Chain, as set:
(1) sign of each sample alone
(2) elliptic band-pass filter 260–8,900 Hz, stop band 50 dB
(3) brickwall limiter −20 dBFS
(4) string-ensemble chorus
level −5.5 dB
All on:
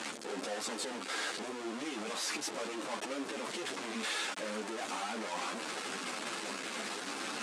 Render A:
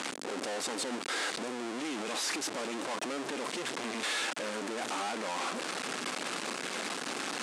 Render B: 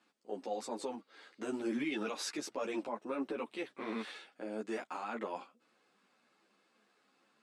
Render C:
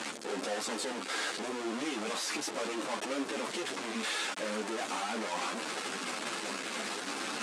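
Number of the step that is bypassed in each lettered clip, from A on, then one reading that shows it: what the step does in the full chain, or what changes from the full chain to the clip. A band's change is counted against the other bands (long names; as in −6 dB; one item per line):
4, change in crest factor −3.0 dB
1, change in crest factor +3.0 dB
3, average gain reduction 2.5 dB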